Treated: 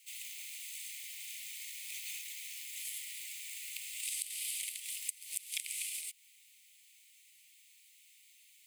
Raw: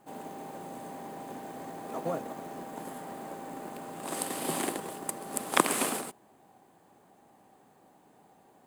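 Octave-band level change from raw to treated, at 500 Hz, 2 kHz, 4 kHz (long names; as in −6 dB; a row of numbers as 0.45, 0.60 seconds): below −40 dB, −7.0 dB, −1.0 dB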